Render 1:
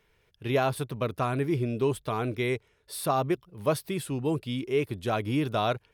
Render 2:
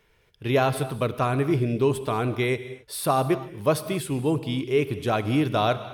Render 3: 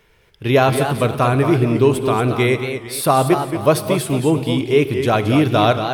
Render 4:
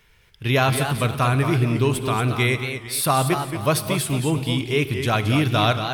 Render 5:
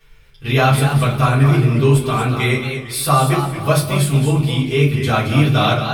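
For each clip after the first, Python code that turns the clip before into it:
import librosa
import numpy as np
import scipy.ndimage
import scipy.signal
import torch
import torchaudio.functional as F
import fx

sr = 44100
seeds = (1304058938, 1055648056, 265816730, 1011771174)

y1 = fx.rev_gated(x, sr, seeds[0], gate_ms=290, shape='flat', drr_db=12.0)
y1 = y1 * 10.0 ** (4.0 / 20.0)
y2 = fx.echo_warbled(y1, sr, ms=227, feedback_pct=33, rate_hz=2.8, cents=140, wet_db=-8.0)
y2 = y2 * 10.0 ** (7.5 / 20.0)
y3 = fx.peak_eq(y2, sr, hz=450.0, db=-10.0, octaves=2.3)
y3 = y3 * 10.0 ** (1.0 / 20.0)
y4 = fx.room_shoebox(y3, sr, seeds[1], volume_m3=120.0, walls='furnished', distance_m=3.6)
y4 = y4 * 10.0 ** (-5.5 / 20.0)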